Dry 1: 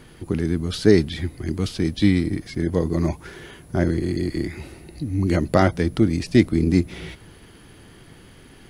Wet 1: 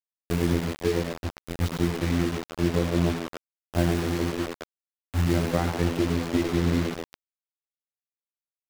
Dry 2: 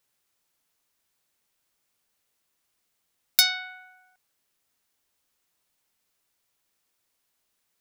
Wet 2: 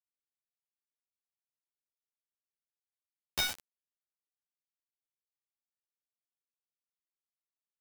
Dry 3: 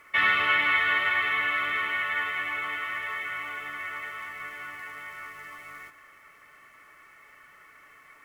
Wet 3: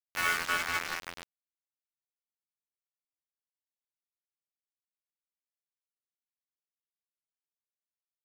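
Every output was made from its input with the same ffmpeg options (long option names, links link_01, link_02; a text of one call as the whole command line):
ffmpeg -i in.wav -filter_complex "[0:a]aeval=exprs='val(0)+0.5*0.0531*sgn(val(0))':channel_layout=same,agate=range=-52dB:threshold=-19dB:ratio=16:detection=peak,bandreject=frequency=60:width_type=h:width=6,bandreject=frequency=120:width_type=h:width=6,bandreject=frequency=180:width_type=h:width=6,bandreject=frequency=240:width_type=h:width=6,bandreject=frequency=300:width_type=h:width=6,bandreject=frequency=360:width_type=h:width=6,bandreject=frequency=420:width_type=h:width=6,acompressor=threshold=-22dB:ratio=10,afftfilt=real='hypot(re,im)*cos(PI*b)':imag='0':win_size=2048:overlap=0.75,acrusher=bits=3:mode=log:mix=0:aa=0.000001,aeval=exprs='(mod(2.99*val(0)+1,2)-1)/2.99':channel_layout=same,highshelf=frequency=3400:gain=-11,asplit=7[link_01][link_02][link_03][link_04][link_05][link_06][link_07];[link_02]adelay=104,afreqshift=79,volume=-9dB[link_08];[link_03]adelay=208,afreqshift=158,volume=-14.7dB[link_09];[link_04]adelay=312,afreqshift=237,volume=-20.4dB[link_10];[link_05]adelay=416,afreqshift=316,volume=-26dB[link_11];[link_06]adelay=520,afreqshift=395,volume=-31.7dB[link_12];[link_07]adelay=624,afreqshift=474,volume=-37.4dB[link_13];[link_01][link_08][link_09][link_10][link_11][link_12][link_13]amix=inputs=7:normalize=0,acrusher=bits=5:mix=0:aa=0.000001,adynamicequalizer=threshold=0.00141:dfrequency=7300:dqfactor=0.7:tfrequency=7300:tqfactor=0.7:attack=5:release=100:ratio=0.375:range=4:mode=cutabove:tftype=highshelf,volume=4dB" out.wav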